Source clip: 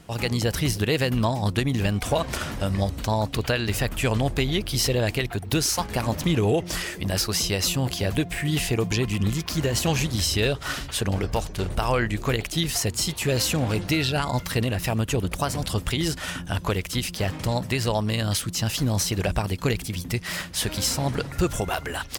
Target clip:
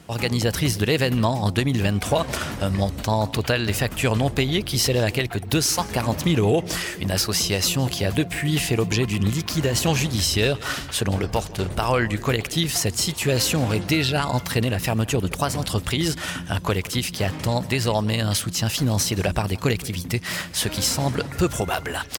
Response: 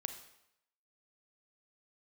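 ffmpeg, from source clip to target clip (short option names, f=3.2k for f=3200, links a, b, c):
-filter_complex "[0:a]highpass=64,asplit=2[a][b];[b]adelay=169.1,volume=-20dB,highshelf=f=4k:g=-3.8[c];[a][c]amix=inputs=2:normalize=0,volume=2.5dB"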